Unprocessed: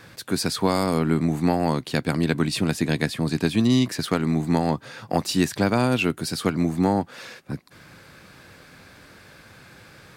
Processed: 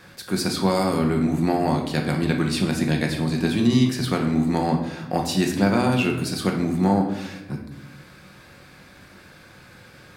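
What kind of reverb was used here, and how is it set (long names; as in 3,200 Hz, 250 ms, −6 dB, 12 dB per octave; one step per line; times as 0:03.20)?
rectangular room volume 330 cubic metres, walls mixed, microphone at 0.95 metres
level −2 dB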